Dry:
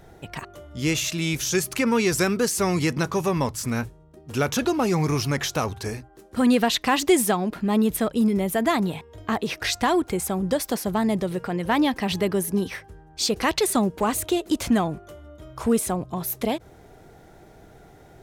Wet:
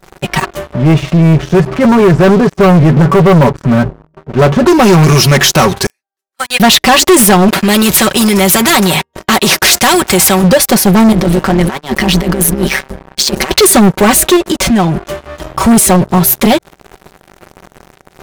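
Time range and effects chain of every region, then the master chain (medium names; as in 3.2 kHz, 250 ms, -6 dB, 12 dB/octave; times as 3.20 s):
0.73–4.67 s: comb 7 ms, depth 47% + transient shaper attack -5 dB, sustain +2 dB + low-pass 1 kHz
5.86–6.60 s: high-pass 1.3 kHz + upward expansion 2.5:1, over -42 dBFS
7.48–10.44 s: high-pass 65 Hz 24 dB/octave + expander -37 dBFS + spectrum-flattening compressor 2:1
11.12–13.51 s: AM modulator 140 Hz, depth 95% + compressor with a negative ratio -31 dBFS, ratio -0.5
14.36–15.43 s: treble shelf 9.2 kHz -7 dB + compression 4:1, threshold -28 dBFS + tape noise reduction on one side only encoder only
whole clip: comb 5.3 ms, depth 76%; waveshaping leveller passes 5; trim +2 dB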